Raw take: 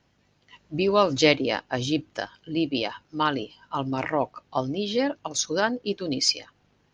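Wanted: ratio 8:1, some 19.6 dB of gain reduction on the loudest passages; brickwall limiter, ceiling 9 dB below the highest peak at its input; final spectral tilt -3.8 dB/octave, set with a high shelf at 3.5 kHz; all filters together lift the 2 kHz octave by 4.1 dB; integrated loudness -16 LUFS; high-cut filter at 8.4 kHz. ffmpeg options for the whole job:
-af "lowpass=8400,equalizer=f=2000:t=o:g=3.5,highshelf=f=3500:g=5.5,acompressor=threshold=0.02:ratio=8,volume=15.8,alimiter=limit=0.708:level=0:latency=1"

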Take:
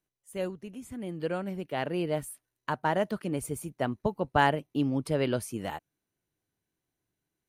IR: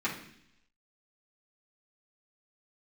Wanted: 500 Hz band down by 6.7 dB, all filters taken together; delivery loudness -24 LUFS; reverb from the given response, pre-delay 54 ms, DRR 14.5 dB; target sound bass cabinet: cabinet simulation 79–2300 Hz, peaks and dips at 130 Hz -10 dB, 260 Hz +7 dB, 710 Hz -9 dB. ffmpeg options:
-filter_complex "[0:a]equalizer=f=500:t=o:g=-6.5,asplit=2[s0][s1];[1:a]atrim=start_sample=2205,adelay=54[s2];[s1][s2]afir=irnorm=-1:irlink=0,volume=0.075[s3];[s0][s3]amix=inputs=2:normalize=0,highpass=f=79:w=0.5412,highpass=f=79:w=1.3066,equalizer=f=130:t=q:w=4:g=-10,equalizer=f=260:t=q:w=4:g=7,equalizer=f=710:t=q:w=4:g=-9,lowpass=f=2300:w=0.5412,lowpass=f=2300:w=1.3066,volume=2.82"

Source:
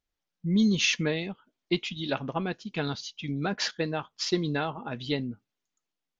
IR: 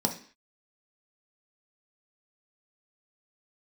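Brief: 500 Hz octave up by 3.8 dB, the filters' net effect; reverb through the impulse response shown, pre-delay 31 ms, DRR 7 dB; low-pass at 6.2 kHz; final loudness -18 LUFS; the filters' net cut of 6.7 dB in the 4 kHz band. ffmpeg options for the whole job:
-filter_complex "[0:a]lowpass=6200,equalizer=f=500:t=o:g=5,equalizer=f=4000:t=o:g=-8,asplit=2[s0][s1];[1:a]atrim=start_sample=2205,adelay=31[s2];[s1][s2]afir=irnorm=-1:irlink=0,volume=0.178[s3];[s0][s3]amix=inputs=2:normalize=0,volume=2.51"

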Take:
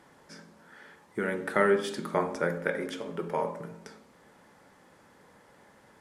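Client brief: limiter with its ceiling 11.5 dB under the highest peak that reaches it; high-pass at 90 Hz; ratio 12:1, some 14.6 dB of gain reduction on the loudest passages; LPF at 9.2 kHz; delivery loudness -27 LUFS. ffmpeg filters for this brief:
-af "highpass=90,lowpass=9200,acompressor=threshold=0.02:ratio=12,volume=6.68,alimiter=limit=0.188:level=0:latency=1"

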